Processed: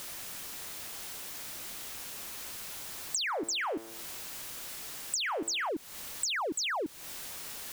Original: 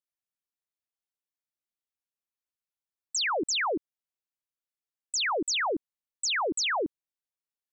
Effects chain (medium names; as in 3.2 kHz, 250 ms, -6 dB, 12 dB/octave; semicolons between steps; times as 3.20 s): jump at every zero crossing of -40 dBFS; 3.25–5.69 s: de-hum 112.6 Hz, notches 29; compression 16:1, threshold -39 dBFS, peak gain reduction 14 dB; trim +8 dB